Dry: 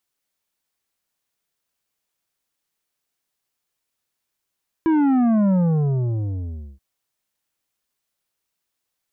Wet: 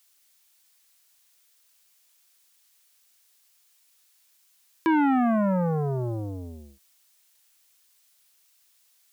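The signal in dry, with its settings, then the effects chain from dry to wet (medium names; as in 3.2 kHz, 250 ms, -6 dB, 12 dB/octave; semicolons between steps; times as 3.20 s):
sub drop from 330 Hz, over 1.93 s, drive 9 dB, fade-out 1.28 s, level -15.5 dB
high-pass 590 Hz 6 dB/octave; treble shelf 2 kHz +11 dB; in parallel at 0 dB: peak limiter -26.5 dBFS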